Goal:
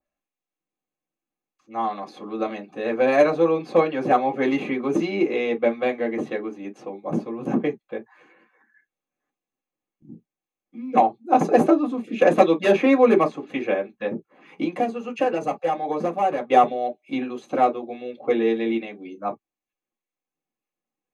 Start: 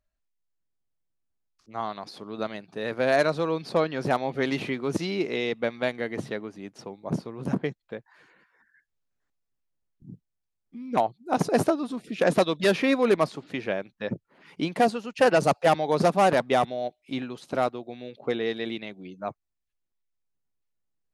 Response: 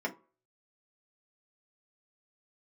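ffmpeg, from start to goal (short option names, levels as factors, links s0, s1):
-filter_complex "[0:a]asettb=1/sr,asplit=3[s0][s1][s2];[s0]atrim=end=14.064[s3];[s1]atrim=start=14.06:end=16.52,asetpts=PTS-STARTPTS,afade=t=in:d=0.004:c=qsin,afade=t=out:st=2.456:d=0.004:c=qsin,acompressor=threshold=0.0398:ratio=4[s4];[s2]atrim=start=16.516[s5];[s3][s4]acrossfade=d=0.004:c1=hsin:c2=qsin[s6];[s6][s5]acrossfade=d=0.004:c1=qsin:c2=hsin[s7];[1:a]atrim=start_sample=2205,atrim=end_sample=3087,asetrate=52920,aresample=44100[s8];[s7][s8]afir=irnorm=-1:irlink=0,adynamicequalizer=threshold=0.0178:dfrequency=2200:dqfactor=0.7:tfrequency=2200:tqfactor=0.7:attack=5:release=100:ratio=0.375:range=1.5:mode=cutabove:tftype=highshelf"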